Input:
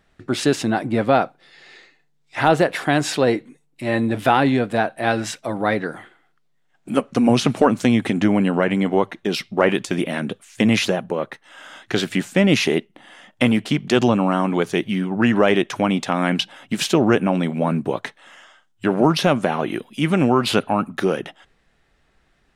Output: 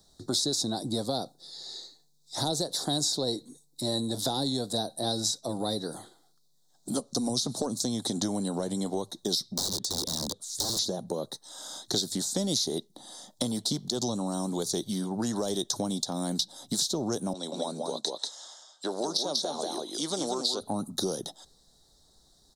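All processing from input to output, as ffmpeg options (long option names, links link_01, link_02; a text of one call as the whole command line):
ffmpeg -i in.wav -filter_complex "[0:a]asettb=1/sr,asplit=3[link_01][link_02][link_03];[link_01]atrim=end=9.454[link_04];[link_02]atrim=start=9.45:end=10.79,asetpts=PTS-STARTPTS,afade=type=in:duration=0.004:curve=qsin,afade=type=out:start_time=1.336:duration=0.004:curve=qsin,acompressor=threshold=-27dB:ratio=1.5:attack=3.2:release=140:knee=1:detection=peak,aeval=exprs='(mod(12.6*val(0)+1,2)-1)/12.6':channel_layout=same[link_05];[link_03]atrim=start=10.786[link_06];[link_04][link_05]acrossfade=duration=0.004:curve1=hsin:curve2=qsin[link_07];[link_07][link_06]acrossfade=duration=0.004:curve1=qsin:curve2=hsin,asettb=1/sr,asplit=3[link_08][link_09][link_10];[link_08]atrim=end=17.334[link_11];[link_09]atrim=start=17.33:end=20.61,asetpts=PTS-STARTPTS,afade=type=in:duration=0.004:curve=qsin,afade=type=out:start_time=3.276:duration=0.004:curve=qsin,highpass=510,lowpass=5900,aecho=1:1:189:0.631,atrim=end_sample=144648,adynamicequalizer=threshold=0.0141:dfrequency=2600:dqfactor=0.7:tfrequency=2600:tqfactor=0.7:attack=5:release=100:ratio=0.375:range=2.5:mode=boostabove:tftype=highshelf[link_12];[link_10]atrim=start=20.606[link_13];[link_11][link_12]acrossfade=duration=0.004:curve1=hsin:curve2=qsin[link_14];[link_14][link_13]acrossfade=duration=0.004:curve1=qsin:curve2=hsin,firequalizer=gain_entry='entry(880,0);entry(1300,-9);entry(2600,-28);entry(3800,15)':delay=0.05:min_phase=1,alimiter=limit=-5.5dB:level=0:latency=1:release=325,acrossover=split=84|530|3700|7800[link_15][link_16][link_17][link_18][link_19];[link_15]acompressor=threshold=-49dB:ratio=4[link_20];[link_16]acompressor=threshold=-29dB:ratio=4[link_21];[link_17]acompressor=threshold=-36dB:ratio=4[link_22];[link_18]acompressor=threshold=-28dB:ratio=4[link_23];[link_19]acompressor=threshold=-40dB:ratio=4[link_24];[link_20][link_21][link_22][link_23][link_24]amix=inputs=5:normalize=0,volume=-2.5dB" out.wav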